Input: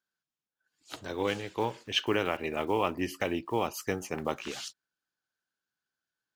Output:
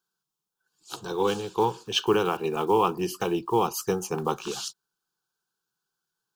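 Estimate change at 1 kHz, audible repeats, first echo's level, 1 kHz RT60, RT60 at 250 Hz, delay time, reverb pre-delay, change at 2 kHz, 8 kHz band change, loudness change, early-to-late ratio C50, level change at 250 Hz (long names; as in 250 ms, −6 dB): +7.5 dB, no echo audible, no echo audible, no reverb audible, no reverb audible, no echo audible, no reverb audible, −1.5 dB, +7.5 dB, +5.5 dB, no reverb audible, +4.5 dB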